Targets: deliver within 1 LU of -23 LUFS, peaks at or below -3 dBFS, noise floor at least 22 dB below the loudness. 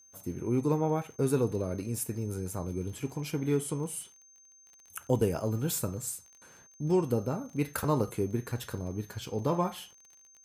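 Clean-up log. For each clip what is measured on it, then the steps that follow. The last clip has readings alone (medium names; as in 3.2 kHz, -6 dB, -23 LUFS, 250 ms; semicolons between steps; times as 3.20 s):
tick rate 28 per s; steady tone 6.3 kHz; tone level -56 dBFS; loudness -32.0 LUFS; peak level -13.5 dBFS; loudness target -23.0 LUFS
-> de-click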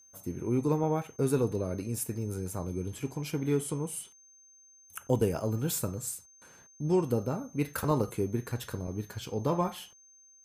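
tick rate 0 per s; steady tone 6.3 kHz; tone level -56 dBFS
-> band-stop 6.3 kHz, Q 30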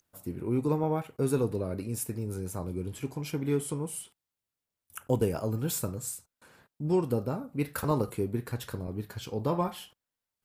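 steady tone not found; loudness -32.0 LUFS; peak level -12.5 dBFS; loudness target -23.0 LUFS
-> trim +9 dB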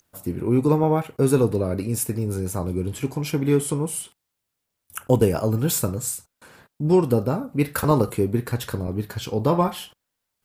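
loudness -23.0 LUFS; peak level -3.5 dBFS; noise floor -80 dBFS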